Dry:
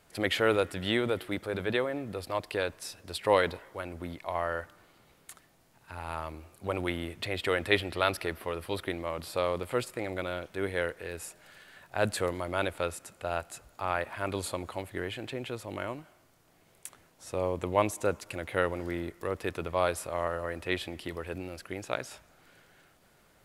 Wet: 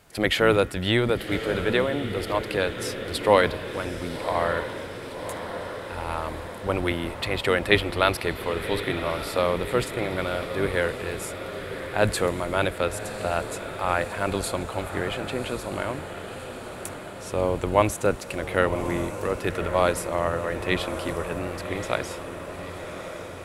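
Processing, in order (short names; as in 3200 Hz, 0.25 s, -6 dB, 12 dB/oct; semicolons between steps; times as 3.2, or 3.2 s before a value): octaver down 1 oct, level -5 dB; diffused feedback echo 1.127 s, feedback 67%, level -10 dB; gain +6 dB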